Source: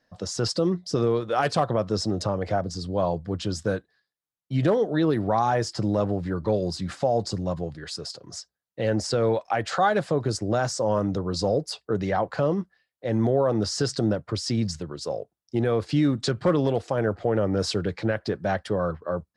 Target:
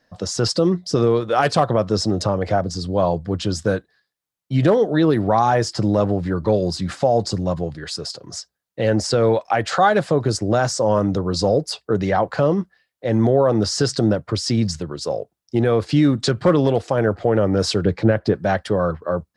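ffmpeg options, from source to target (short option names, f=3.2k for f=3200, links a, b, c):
-filter_complex "[0:a]asettb=1/sr,asplit=3[a][b][c];[a]atrim=end=17.844[d];[b]atrim=start=17.84:end=18.34,asetpts=PTS-STARTPTS,afade=t=in:d=0.004:c=qsin,afade=t=out:st=0.496:d=0.004:c=qsin,tiltshelf=f=920:g=4.5[e];[c]atrim=start=18.336[f];[d][e]acrossfade=d=0.004:c1=hsin:c2=qsin[g];[g][f]acrossfade=d=0.004:c1=qsin:c2=hsin,volume=6dB"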